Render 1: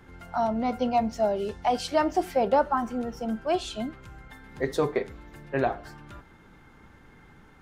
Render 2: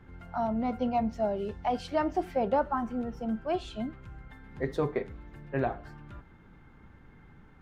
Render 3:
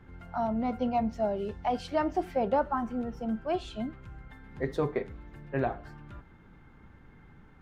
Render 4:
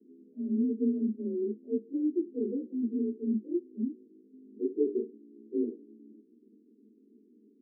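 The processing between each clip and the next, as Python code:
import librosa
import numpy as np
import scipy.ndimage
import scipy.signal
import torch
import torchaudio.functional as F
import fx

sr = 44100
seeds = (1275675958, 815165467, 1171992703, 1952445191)

y1 = fx.bass_treble(x, sr, bass_db=6, treble_db=-10)
y1 = y1 * 10.0 ** (-5.0 / 20.0)
y2 = y1
y3 = fx.partial_stretch(y2, sr, pct=88)
y3 = scipy.signal.sosfilt(scipy.signal.cheby1(5, 1.0, [210.0, 450.0], 'bandpass', fs=sr, output='sos'), y3)
y3 = y3 * 10.0 ** (5.0 / 20.0)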